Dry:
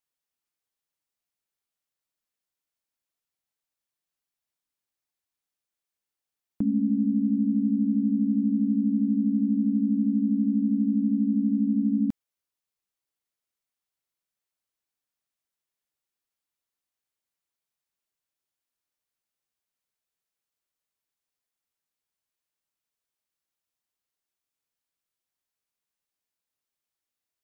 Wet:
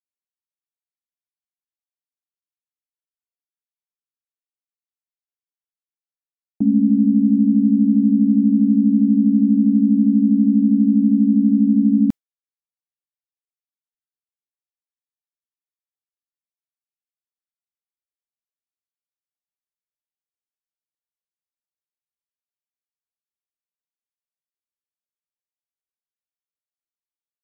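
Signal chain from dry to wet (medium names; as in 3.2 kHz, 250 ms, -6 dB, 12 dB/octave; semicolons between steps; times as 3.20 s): expander -24 dBFS; trim +9 dB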